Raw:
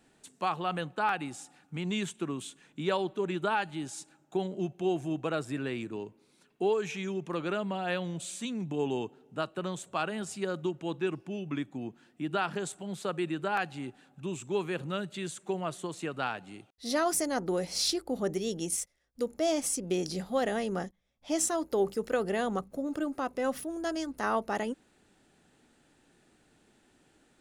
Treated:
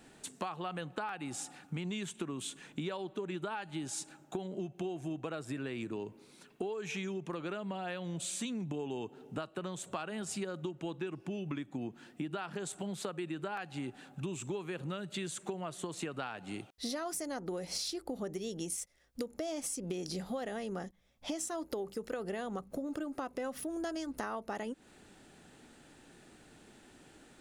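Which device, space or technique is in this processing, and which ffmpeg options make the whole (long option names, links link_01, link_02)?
serial compression, leveller first: -af "acompressor=threshold=-38dB:ratio=1.5,acompressor=threshold=-42dB:ratio=10,volume=7dB"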